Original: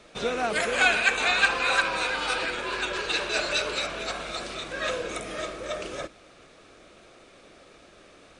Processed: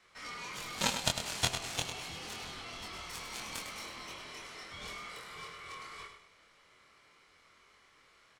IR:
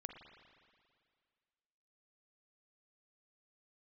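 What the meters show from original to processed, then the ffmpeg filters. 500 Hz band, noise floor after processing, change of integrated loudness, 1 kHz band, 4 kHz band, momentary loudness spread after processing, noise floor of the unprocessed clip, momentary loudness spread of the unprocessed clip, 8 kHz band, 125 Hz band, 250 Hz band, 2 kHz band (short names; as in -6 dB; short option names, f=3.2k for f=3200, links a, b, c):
-17.0 dB, -65 dBFS, -12.5 dB, -13.0 dB, -8.5 dB, 13 LU, -54 dBFS, 13 LU, -3.0 dB, 0.0 dB, -9.5 dB, -17.5 dB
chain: -filter_complex "[0:a]asplit=2[a][b];[b]asoftclip=type=tanh:threshold=-23.5dB,volume=-3.5dB[c];[a][c]amix=inputs=2:normalize=0,aeval=exprs='val(0)*sin(2*PI*1700*n/s)':c=same,aeval=exprs='0.473*(cos(1*acos(clip(val(0)/0.473,-1,1)))-cos(1*PI/2))+0.168*(cos(3*acos(clip(val(0)/0.473,-1,1)))-cos(3*PI/2))+0.0075*(cos(7*acos(clip(val(0)/0.473,-1,1)))-cos(7*PI/2))':c=same,asplit=2[d][e];[e]adelay=24,volume=-3.5dB[f];[d][f]amix=inputs=2:normalize=0,aecho=1:1:102|204|306|408:0.398|0.139|0.0488|0.0171"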